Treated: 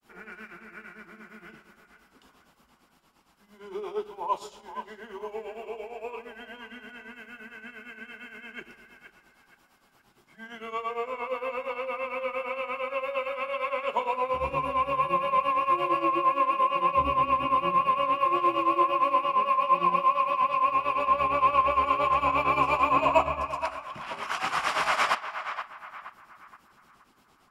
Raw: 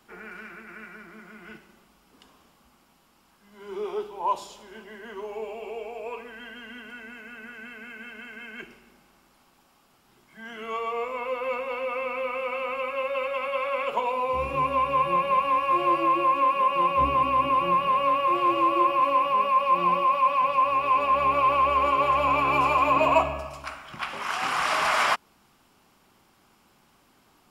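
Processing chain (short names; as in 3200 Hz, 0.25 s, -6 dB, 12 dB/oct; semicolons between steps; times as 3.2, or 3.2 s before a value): grains 0.162 s, grains 8.7/s, spray 20 ms, pitch spread up and down by 0 st; on a send: narrowing echo 0.473 s, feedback 40%, band-pass 1300 Hz, level -8.5 dB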